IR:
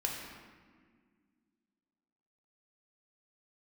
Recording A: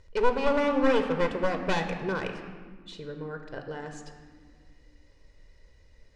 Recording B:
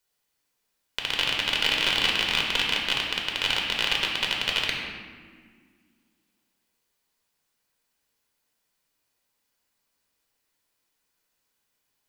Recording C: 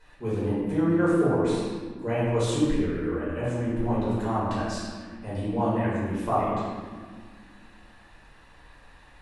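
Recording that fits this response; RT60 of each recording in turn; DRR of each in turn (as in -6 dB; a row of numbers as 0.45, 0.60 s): B; 1.9, 1.8, 1.8 s; 5.5, -1.5, -11.0 dB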